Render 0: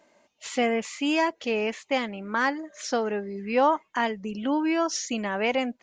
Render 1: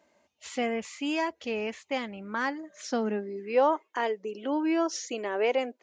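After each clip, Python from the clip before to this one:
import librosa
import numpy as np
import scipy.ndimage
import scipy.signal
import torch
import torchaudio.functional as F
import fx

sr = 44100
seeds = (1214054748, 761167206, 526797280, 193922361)

y = fx.filter_sweep_highpass(x, sr, from_hz=71.0, to_hz=390.0, start_s=2.12, end_s=3.59, q=3.1)
y = y * 10.0 ** (-5.5 / 20.0)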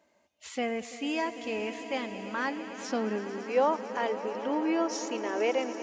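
y = fx.echo_swell(x, sr, ms=112, loudest=5, wet_db=-16)
y = y * 10.0 ** (-2.0 / 20.0)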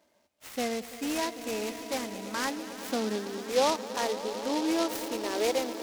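y = fx.noise_mod_delay(x, sr, seeds[0], noise_hz=3800.0, depth_ms=0.074)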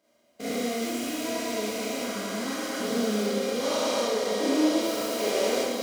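y = fx.spec_steps(x, sr, hold_ms=400)
y = fx.notch_comb(y, sr, f0_hz=880.0)
y = fx.rev_schroeder(y, sr, rt60_s=0.87, comb_ms=26, drr_db=-7.0)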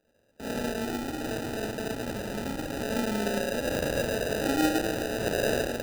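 y = fx.sample_hold(x, sr, seeds[1], rate_hz=1100.0, jitter_pct=0)
y = y * 10.0 ** (-2.0 / 20.0)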